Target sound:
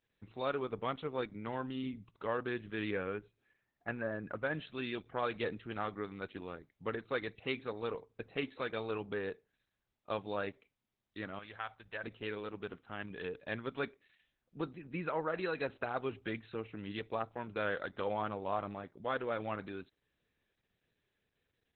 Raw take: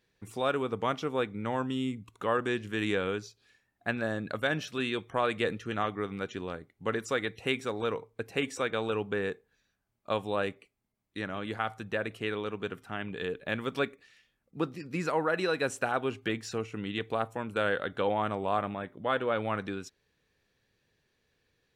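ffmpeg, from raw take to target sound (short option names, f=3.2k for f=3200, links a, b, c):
-filter_complex "[0:a]asplit=3[a][b][c];[a]afade=t=out:st=2.9:d=0.02[d];[b]lowpass=f=2.5k:w=0.5412,lowpass=f=2.5k:w=1.3066,afade=t=in:st=2.9:d=0.02,afade=t=out:st=4.53:d=0.02[e];[c]afade=t=in:st=4.53:d=0.02[f];[d][e][f]amix=inputs=3:normalize=0,asettb=1/sr,asplit=3[g][h][i];[g]atrim=end=11.394[j];[h]atrim=start=11.39:end=12.04,asetpts=PTS-STARTPTS,afade=t=in:d=0.004:c=qsin,afade=t=out:st=0.646:d=0.004:c=qsin,equalizer=f=230:t=o:w=2.5:g=-14[k];[i]atrim=start=12.036[l];[j][k]acrossfade=d=0.004:c1=hsin:c2=qsin[m];[m][l]acrossfade=d=0.004:c1=qsin:c2=hsin,volume=-6dB" -ar 48000 -c:a libopus -b:a 8k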